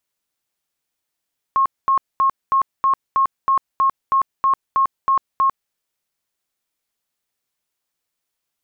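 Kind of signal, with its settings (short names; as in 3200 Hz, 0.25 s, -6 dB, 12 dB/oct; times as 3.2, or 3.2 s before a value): tone bursts 1080 Hz, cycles 105, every 0.32 s, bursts 13, -12.5 dBFS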